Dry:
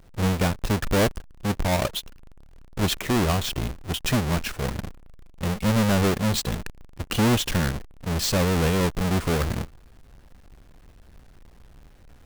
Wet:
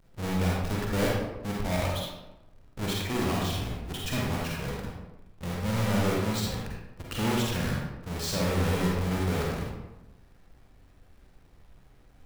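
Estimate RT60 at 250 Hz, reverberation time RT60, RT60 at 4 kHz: 0.95 s, 0.95 s, 0.60 s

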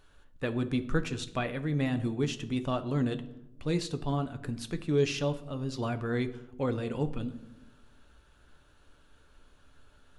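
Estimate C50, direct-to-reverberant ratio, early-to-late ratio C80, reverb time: 14.5 dB, 8.0 dB, 17.0 dB, 0.95 s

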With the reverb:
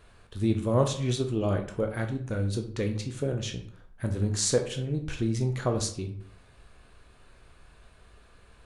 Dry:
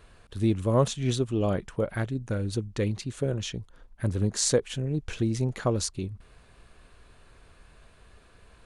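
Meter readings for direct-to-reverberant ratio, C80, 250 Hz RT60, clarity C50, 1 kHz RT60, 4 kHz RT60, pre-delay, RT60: 4.0 dB, 13.5 dB, 0.65 s, 10.0 dB, 0.55 s, 0.35 s, 13 ms, 0.60 s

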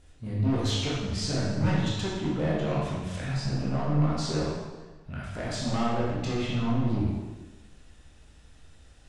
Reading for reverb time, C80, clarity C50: 1.2 s, 2.0 dB, −1.0 dB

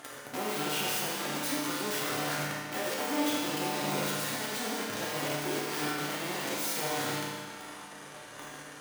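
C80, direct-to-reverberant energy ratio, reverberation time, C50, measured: 1.0 dB, −5.5 dB, 1.8 s, −1.0 dB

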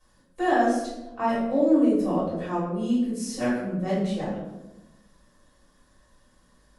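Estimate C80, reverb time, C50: 4.0 dB, 1.0 s, 1.0 dB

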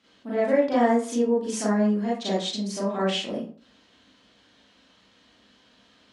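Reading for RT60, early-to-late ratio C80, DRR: 0.40 s, 8.5 dB, −8.5 dB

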